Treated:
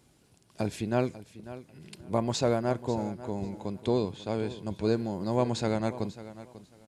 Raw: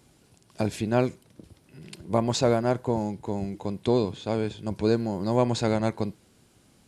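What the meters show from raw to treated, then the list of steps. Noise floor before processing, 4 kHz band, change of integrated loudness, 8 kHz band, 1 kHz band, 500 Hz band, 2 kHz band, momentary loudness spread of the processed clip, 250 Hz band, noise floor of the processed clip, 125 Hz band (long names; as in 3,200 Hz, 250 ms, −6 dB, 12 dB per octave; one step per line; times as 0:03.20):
−61 dBFS, −4.0 dB, −4.0 dB, −4.0 dB, −4.0 dB, −4.0 dB, −4.0 dB, 18 LU, −4.0 dB, −63 dBFS, −4.0 dB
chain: repeating echo 544 ms, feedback 21%, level −15.5 dB
level −4 dB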